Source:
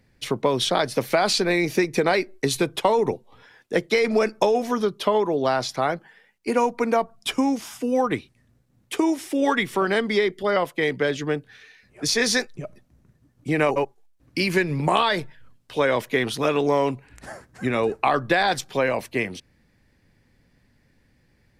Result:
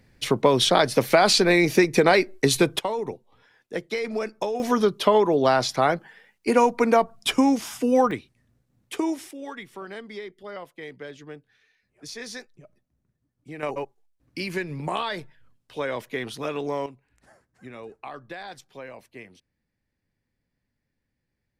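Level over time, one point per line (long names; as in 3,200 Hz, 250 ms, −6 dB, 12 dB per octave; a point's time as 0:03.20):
+3 dB
from 0:02.79 −8 dB
from 0:04.60 +2.5 dB
from 0:08.11 −4.5 dB
from 0:09.31 −16 dB
from 0:13.63 −8 dB
from 0:16.86 −18 dB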